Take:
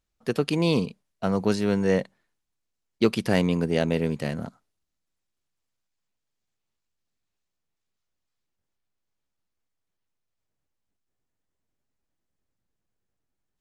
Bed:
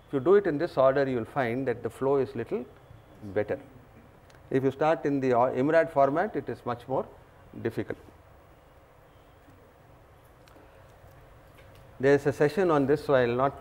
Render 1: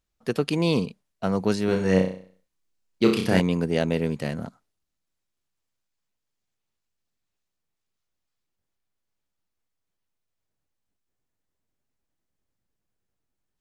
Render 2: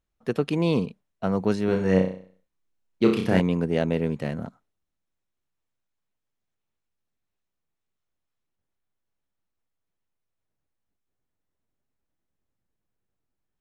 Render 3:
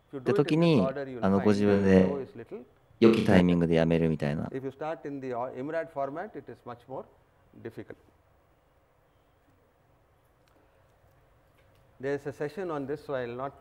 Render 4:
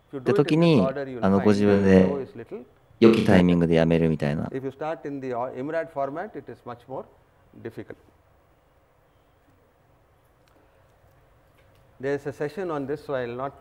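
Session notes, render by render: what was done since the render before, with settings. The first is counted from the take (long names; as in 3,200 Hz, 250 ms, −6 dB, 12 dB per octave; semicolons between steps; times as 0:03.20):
0:01.65–0:03.40: flutter between parallel walls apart 5.5 metres, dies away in 0.47 s
high-shelf EQ 3,500 Hz −9.5 dB; notch filter 4,700 Hz, Q 12
mix in bed −10 dB
level +4.5 dB; brickwall limiter −3 dBFS, peak gain reduction 2.5 dB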